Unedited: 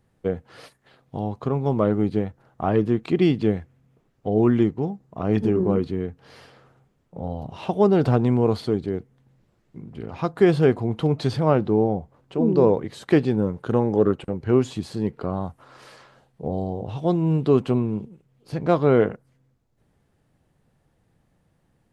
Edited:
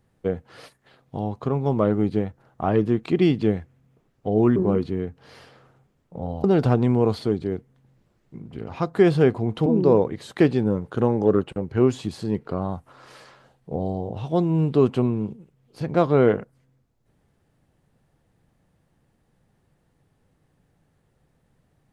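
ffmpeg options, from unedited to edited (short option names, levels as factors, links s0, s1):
-filter_complex "[0:a]asplit=4[s0][s1][s2][s3];[s0]atrim=end=4.562[s4];[s1]atrim=start=5.568:end=7.452[s5];[s2]atrim=start=7.858:end=11.082[s6];[s3]atrim=start=12.378[s7];[s4][s5]acrossfade=d=0.004:c1=hsin:c2=hsin[s8];[s8][s6]acrossfade=d=0.004:c1=hsin:c2=hsin[s9];[s9][s7]acrossfade=d=0.004:c1=hsin:c2=hsin"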